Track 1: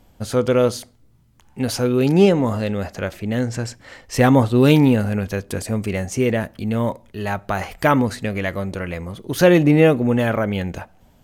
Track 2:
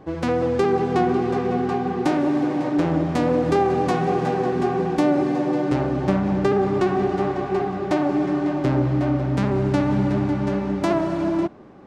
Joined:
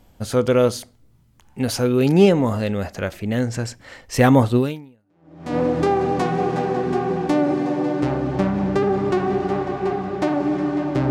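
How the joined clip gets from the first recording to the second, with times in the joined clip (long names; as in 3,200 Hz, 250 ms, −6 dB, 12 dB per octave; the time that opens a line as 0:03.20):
track 1
0:05.06: continue with track 2 from 0:02.75, crossfade 1.00 s exponential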